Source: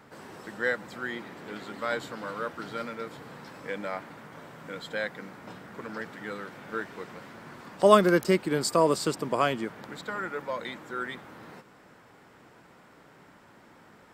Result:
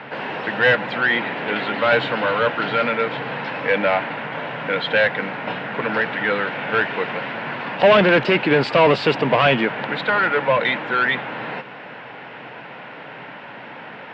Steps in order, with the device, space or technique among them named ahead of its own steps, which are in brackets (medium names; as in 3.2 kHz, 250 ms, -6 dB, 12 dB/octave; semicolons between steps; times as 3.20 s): overdrive pedal into a guitar cabinet (overdrive pedal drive 30 dB, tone 2.4 kHz, clips at -3.5 dBFS; cabinet simulation 91–3600 Hz, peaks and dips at 130 Hz +8 dB, 360 Hz -6 dB, 1.2 kHz -8 dB, 2.7 kHz +6 dB)